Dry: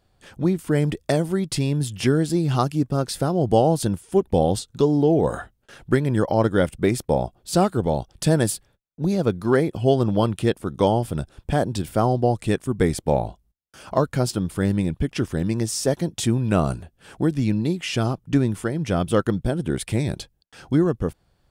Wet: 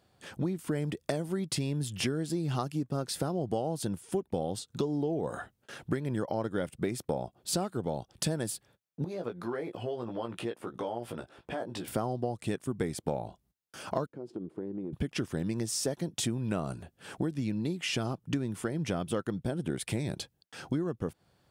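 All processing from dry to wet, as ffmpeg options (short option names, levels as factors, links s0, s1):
-filter_complex "[0:a]asettb=1/sr,asplit=3[s0][s1][s2];[s0]atrim=end=9.044[s3];[s1]atrim=start=9.04:end=11.88,asetpts=PTS-STARTPTS,afade=t=in:d=0.004:c=qsin,afade=t=out:st=2.836:d=0.004:c=qsin,bass=f=250:g=-13,treble=f=4000:g=-11,acompressor=threshold=0.0158:ratio=3:attack=3.2:release=140:knee=1:detection=peak,asplit=2[s4][s5];[s5]adelay=17,volume=0.596[s6];[s4][s6]amix=inputs=2:normalize=0,atrim=end_sample=125244[s7];[s2]atrim=start=11.876[s8];[s3][s7]acrossfade=d=0.004:c1=hsin:c2=qsin[s9];[s9][s8]acrossfade=d=0.004:c1=qsin:c2=hsin,asettb=1/sr,asplit=3[s10][s11][s12];[s10]atrim=end=14.064[s13];[s11]atrim=start=14.06:end=14.93,asetpts=PTS-STARTPTS,afade=t=in:d=0.004:c=qsin,afade=t=out:st=0.866:d=0.004:c=qsin,bandpass=f=360:t=q:w=3,acompressor=threshold=0.0251:ratio=10:attack=3.2:release=140:knee=1:detection=peak[s14];[s12]atrim=start=14.926[s15];[s13][s14]acrossfade=d=0.004:c1=hsin:c2=qsin[s16];[s16][s15]acrossfade=d=0.004:c1=qsin:c2=hsin,highpass=110,acompressor=threshold=0.0355:ratio=6"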